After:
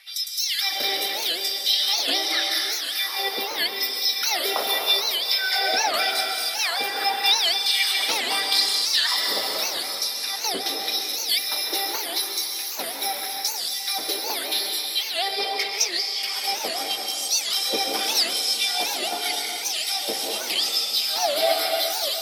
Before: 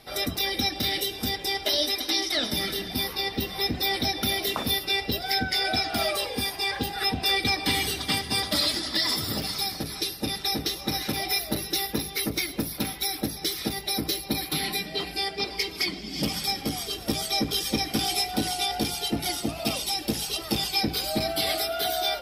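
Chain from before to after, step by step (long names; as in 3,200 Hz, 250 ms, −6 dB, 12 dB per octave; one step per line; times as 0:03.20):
auto-filter high-pass sine 0.83 Hz 490–6,600 Hz
dense smooth reverb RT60 2.9 s, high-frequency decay 0.8×, pre-delay 115 ms, DRR 0 dB
wow of a warped record 78 rpm, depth 250 cents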